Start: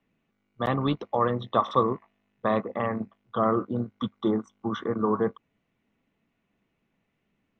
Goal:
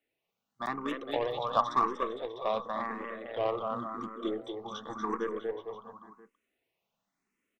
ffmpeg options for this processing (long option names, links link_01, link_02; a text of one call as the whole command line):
ffmpeg -i in.wav -filter_complex "[0:a]bass=frequency=250:gain=-13,treble=frequency=4000:gain=9,aecho=1:1:240|456|650.4|825.4|982.8:0.631|0.398|0.251|0.158|0.1,aeval=exprs='0.422*(cos(1*acos(clip(val(0)/0.422,-1,1)))-cos(1*PI/2))+0.0376*(cos(3*acos(clip(val(0)/0.422,-1,1)))-cos(3*PI/2))+0.00944*(cos(7*acos(clip(val(0)/0.422,-1,1)))-cos(7*PI/2))+0.00668*(cos(8*acos(clip(val(0)/0.422,-1,1)))-cos(8*PI/2))':channel_layout=same,asplit=2[link_01][link_02];[link_02]afreqshift=0.92[link_03];[link_01][link_03]amix=inputs=2:normalize=1" out.wav